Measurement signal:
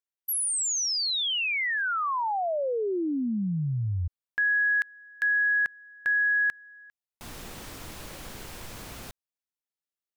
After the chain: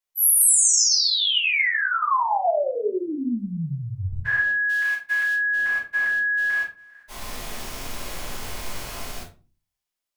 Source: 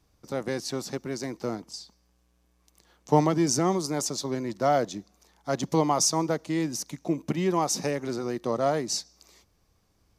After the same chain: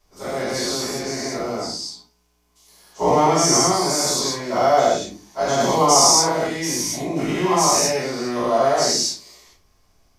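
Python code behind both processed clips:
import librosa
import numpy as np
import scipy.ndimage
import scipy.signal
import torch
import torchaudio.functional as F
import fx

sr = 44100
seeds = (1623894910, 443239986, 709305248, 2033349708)

y = fx.spec_dilate(x, sr, span_ms=240)
y = fx.low_shelf(y, sr, hz=420.0, db=-10.0)
y = fx.room_shoebox(y, sr, seeds[0], volume_m3=150.0, walls='furnished', distance_m=4.9)
y = y * 10.0 ** (-6.0 / 20.0)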